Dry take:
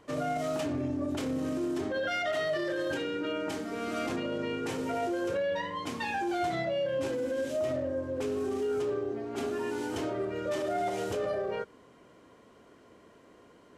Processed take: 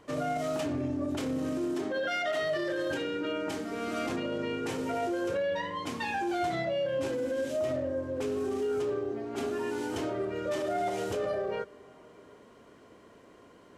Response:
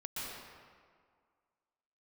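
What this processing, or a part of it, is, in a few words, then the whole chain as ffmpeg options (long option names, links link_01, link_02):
ducked reverb: -filter_complex "[0:a]asettb=1/sr,asplit=3[link_01][link_02][link_03];[link_01]atrim=end=1.744[link_04];[link_02]atrim=start=1.74:end=2.43,asetpts=PTS-STARTPTS,afade=type=in:duration=0.004:curve=qsin,afade=type=out:start_time=0.686:duration=0.004:curve=qsin,highpass=160[link_05];[link_03]atrim=start=2.426[link_06];[link_04][link_05]acrossfade=duration=0.004:curve1=hsin:curve2=qsin[link_07];[link_07][link_06]acrossfade=duration=0.004:curve1=qsin:curve2=hsin,asplit=3[link_08][link_09][link_10];[1:a]atrim=start_sample=2205[link_11];[link_09][link_11]afir=irnorm=-1:irlink=0[link_12];[link_10]apad=whole_len=607275[link_13];[link_12][link_13]sidechaincompress=threshold=-46dB:ratio=8:attack=16:release=601,volume=-10dB[link_14];[link_08][link_14]amix=inputs=2:normalize=0"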